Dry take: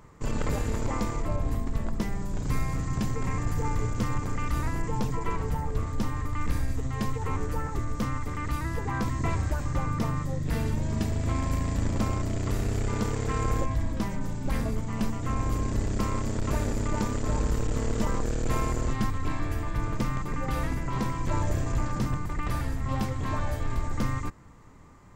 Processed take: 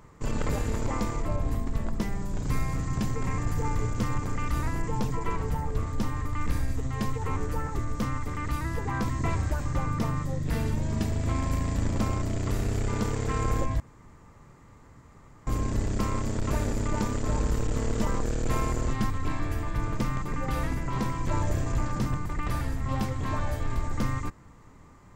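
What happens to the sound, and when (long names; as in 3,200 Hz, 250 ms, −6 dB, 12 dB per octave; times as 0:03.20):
0:13.80–0:15.47: fill with room tone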